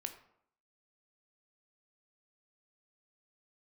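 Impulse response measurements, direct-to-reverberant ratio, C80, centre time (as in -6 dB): 6.0 dB, 13.5 dB, 11 ms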